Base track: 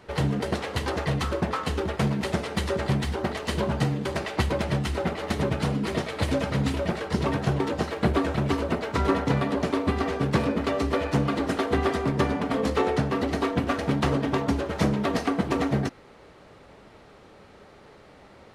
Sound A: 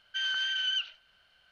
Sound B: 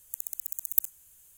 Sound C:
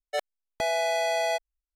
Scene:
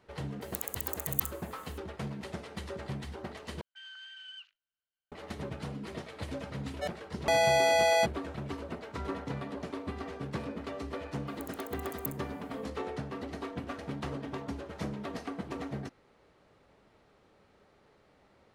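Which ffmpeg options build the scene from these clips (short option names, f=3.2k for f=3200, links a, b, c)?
-filter_complex "[2:a]asplit=2[a][b];[0:a]volume=-13.5dB[c];[a]alimiter=limit=-10dB:level=0:latency=1:release=71[d];[1:a]afwtdn=0.00708[e];[3:a]dynaudnorm=f=200:g=3:m=10dB[f];[c]asplit=2[g][h];[g]atrim=end=3.614[i];[e]atrim=end=1.51,asetpts=PTS-STARTPTS,volume=-17.5dB[j];[h]atrim=start=5.116[k];[d]atrim=end=1.37,asetpts=PTS-STARTPTS,volume=-1.5dB,afade=t=in:d=0.004:c=hsin,afade=t=out:st=1.366:d=0.004:c=hsin,adelay=410[l];[f]atrim=end=1.75,asetpts=PTS-STARTPTS,volume=-8.5dB,afade=t=in:d=0.004:c=hsin,afade=t=out:st=1.746:d=0.004:c=hsin,adelay=6680[m];[b]atrim=end=1.37,asetpts=PTS-STARTPTS,volume=-15dB,afade=t=in:d=0.004:c=hsin,afade=t=out:st=1.366:d=0.004:c=hsin,adelay=11270[n];[i][j]acrossfade=d=0.004:c1=hsin:c2=hsin[o];[o][k]acrossfade=d=0.004:c1=hsin:c2=hsin[p];[p][l][m][n]amix=inputs=4:normalize=0"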